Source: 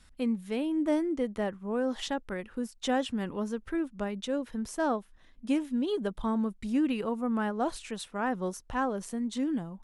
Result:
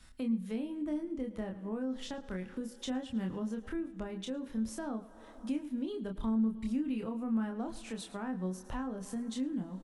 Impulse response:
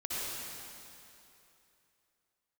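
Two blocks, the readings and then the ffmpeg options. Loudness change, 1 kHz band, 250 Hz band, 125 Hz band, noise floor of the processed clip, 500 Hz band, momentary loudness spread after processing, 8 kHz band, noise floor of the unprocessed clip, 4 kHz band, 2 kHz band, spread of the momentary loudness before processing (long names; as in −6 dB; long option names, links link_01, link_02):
−5.5 dB, −12.0 dB, −4.0 dB, −1.0 dB, −53 dBFS, −9.5 dB, 7 LU, −5.5 dB, −59 dBFS, −7.0 dB, −10.5 dB, 6 LU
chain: -filter_complex "[0:a]asplit=2[link_01][link_02];[link_02]adelay=27,volume=-4dB[link_03];[link_01][link_03]amix=inputs=2:normalize=0,aecho=1:1:108:0.112,asplit=2[link_04][link_05];[1:a]atrim=start_sample=2205,adelay=114[link_06];[link_05][link_06]afir=irnorm=-1:irlink=0,volume=-27.5dB[link_07];[link_04][link_07]amix=inputs=2:normalize=0,acrossover=split=220[link_08][link_09];[link_09]acompressor=threshold=-41dB:ratio=6[link_10];[link_08][link_10]amix=inputs=2:normalize=0"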